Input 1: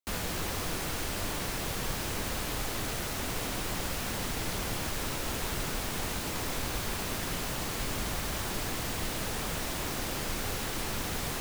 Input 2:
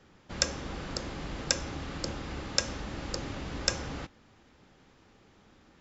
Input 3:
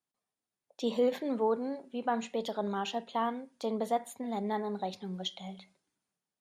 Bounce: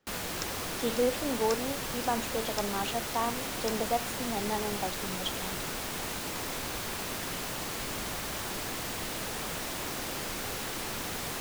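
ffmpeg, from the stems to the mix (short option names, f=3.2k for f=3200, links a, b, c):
-filter_complex "[0:a]volume=-0.5dB[a];[1:a]volume=-12.5dB[b];[2:a]volume=1dB[c];[a][b][c]amix=inputs=3:normalize=0,lowshelf=f=120:g=-10"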